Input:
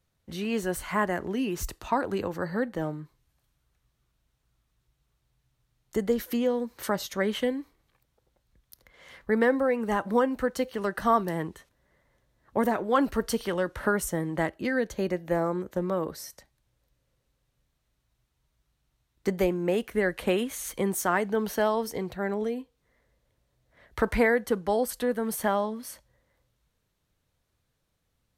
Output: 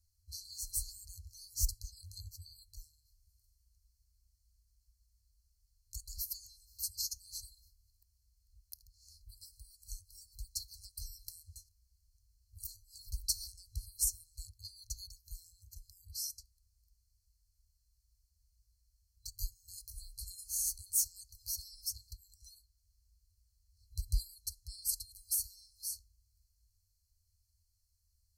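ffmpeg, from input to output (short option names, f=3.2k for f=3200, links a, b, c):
-af "afftfilt=real='re*(1-between(b*sr/4096,100,4100))':imag='im*(1-between(b*sr/4096,100,4100))':win_size=4096:overlap=0.75,volume=2.5dB"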